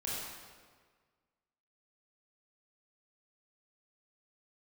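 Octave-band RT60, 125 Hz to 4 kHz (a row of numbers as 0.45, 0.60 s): 1.7, 1.6, 1.7, 1.6, 1.4, 1.2 s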